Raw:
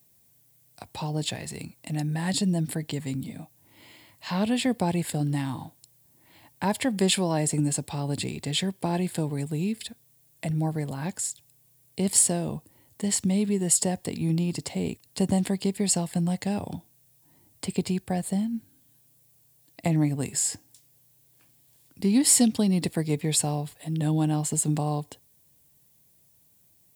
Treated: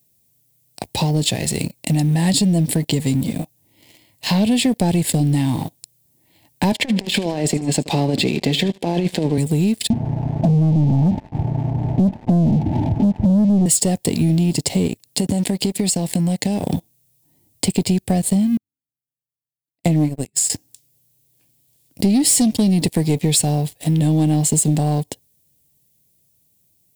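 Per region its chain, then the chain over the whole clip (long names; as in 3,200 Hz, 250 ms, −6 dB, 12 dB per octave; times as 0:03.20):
0:06.72–0:09.38: band-pass filter 200–4,000 Hz + compressor whose output falls as the input rises −31 dBFS, ratio −0.5 + repeating echo 76 ms, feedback 41%, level −17.5 dB
0:09.90–0:13.66: converter with a step at zero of −21 dBFS + Chebyshev low-pass with heavy ripple 910 Hz, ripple 6 dB + comb filter 1 ms, depth 83%
0:14.87–0:16.65: high-pass filter 93 Hz + downward compressor 5 to 1, threshold −30 dBFS
0:18.57–0:20.50: de-essing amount 20% + expander for the loud parts 2.5 to 1, over −42 dBFS
whole clip: leveller curve on the samples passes 3; parametric band 1,300 Hz −14.5 dB 0.85 octaves; downward compressor 4 to 1, threshold −21 dBFS; level +6 dB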